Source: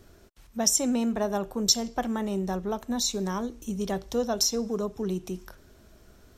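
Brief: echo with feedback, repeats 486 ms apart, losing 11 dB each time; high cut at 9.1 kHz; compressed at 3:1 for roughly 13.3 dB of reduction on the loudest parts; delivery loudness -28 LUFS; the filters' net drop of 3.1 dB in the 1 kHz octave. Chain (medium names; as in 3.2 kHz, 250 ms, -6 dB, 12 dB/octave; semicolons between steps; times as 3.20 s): low-pass 9.1 kHz; peaking EQ 1 kHz -4.5 dB; compression 3:1, threshold -38 dBFS; feedback delay 486 ms, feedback 28%, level -11 dB; trim +10.5 dB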